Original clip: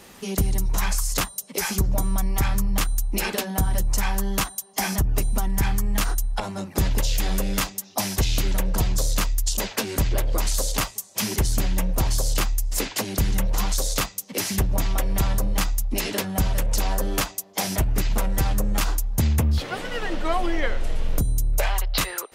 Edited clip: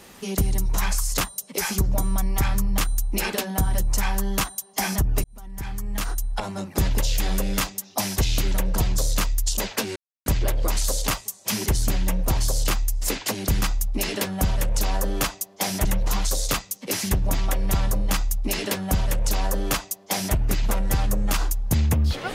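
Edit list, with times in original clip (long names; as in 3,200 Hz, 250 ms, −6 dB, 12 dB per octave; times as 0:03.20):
0:05.24–0:06.50: fade in
0:09.96: splice in silence 0.30 s
0:15.59–0:17.82: duplicate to 0:13.32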